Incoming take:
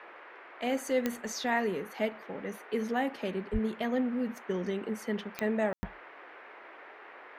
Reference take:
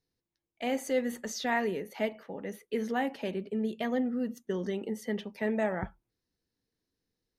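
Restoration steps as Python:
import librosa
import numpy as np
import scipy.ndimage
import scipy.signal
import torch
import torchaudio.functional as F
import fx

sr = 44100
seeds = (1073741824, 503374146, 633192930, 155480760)

y = fx.fix_declick_ar(x, sr, threshold=10.0)
y = fx.fix_deplosive(y, sr, at_s=(3.52,))
y = fx.fix_ambience(y, sr, seeds[0], print_start_s=0.07, print_end_s=0.57, start_s=5.73, end_s=5.83)
y = fx.noise_reduce(y, sr, print_start_s=0.07, print_end_s=0.57, reduce_db=30.0)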